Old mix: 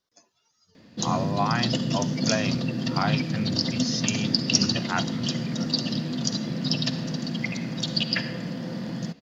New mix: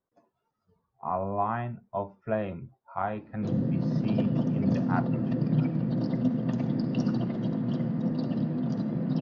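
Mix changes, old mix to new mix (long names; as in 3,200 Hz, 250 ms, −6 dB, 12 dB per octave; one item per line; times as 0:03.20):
background: entry +2.45 s
master: add low-pass filter 1,000 Hz 12 dB per octave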